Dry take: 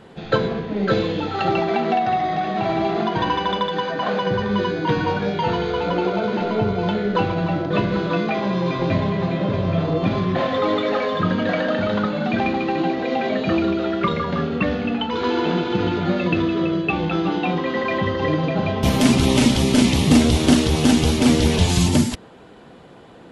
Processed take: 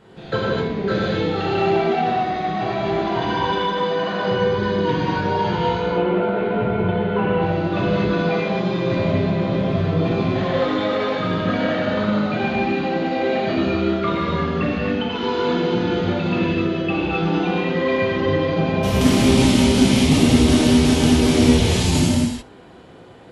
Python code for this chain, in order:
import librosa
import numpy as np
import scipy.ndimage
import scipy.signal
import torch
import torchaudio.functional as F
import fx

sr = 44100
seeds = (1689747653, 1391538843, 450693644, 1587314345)

p1 = fx.rattle_buzz(x, sr, strikes_db=-16.0, level_db=-26.0)
p2 = fx.lowpass(p1, sr, hz=2900.0, slope=24, at=(5.75, 7.42))
p3 = p2 + fx.echo_single(p2, sr, ms=78, db=-23.5, dry=0)
p4 = fx.rev_gated(p3, sr, seeds[0], gate_ms=290, shape='flat', drr_db=-6.0)
y = F.gain(torch.from_numpy(p4), -6.5).numpy()